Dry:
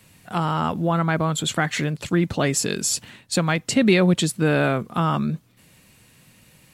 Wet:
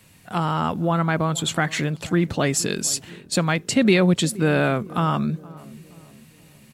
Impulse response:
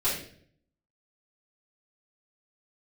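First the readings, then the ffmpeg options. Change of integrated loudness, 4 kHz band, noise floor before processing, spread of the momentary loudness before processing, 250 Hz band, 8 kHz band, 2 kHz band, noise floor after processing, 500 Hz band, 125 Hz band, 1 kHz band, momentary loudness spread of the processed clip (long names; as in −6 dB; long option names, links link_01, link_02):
0.0 dB, 0.0 dB, −55 dBFS, 8 LU, 0.0 dB, 0.0 dB, 0.0 dB, −52 dBFS, 0.0 dB, 0.0 dB, 0.0 dB, 9 LU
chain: -filter_complex "[0:a]asplit=2[link_01][link_02];[link_02]adelay=472,lowpass=frequency=830:poles=1,volume=-19dB,asplit=2[link_03][link_04];[link_04]adelay=472,lowpass=frequency=830:poles=1,volume=0.53,asplit=2[link_05][link_06];[link_06]adelay=472,lowpass=frequency=830:poles=1,volume=0.53,asplit=2[link_07][link_08];[link_08]adelay=472,lowpass=frequency=830:poles=1,volume=0.53[link_09];[link_01][link_03][link_05][link_07][link_09]amix=inputs=5:normalize=0"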